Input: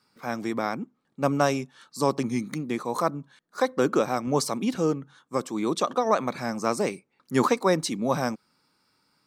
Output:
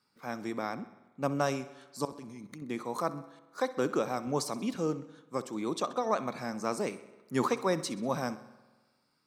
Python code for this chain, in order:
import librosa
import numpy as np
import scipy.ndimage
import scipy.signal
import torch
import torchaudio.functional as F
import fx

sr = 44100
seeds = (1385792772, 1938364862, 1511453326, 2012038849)

y = fx.level_steps(x, sr, step_db=19, at=(2.05, 2.62))
y = fx.echo_feedback(y, sr, ms=64, feedback_pct=58, wet_db=-17.5)
y = fx.rev_spring(y, sr, rt60_s=1.4, pass_ms=(46,), chirp_ms=65, drr_db=17.5)
y = y * 10.0 ** (-7.0 / 20.0)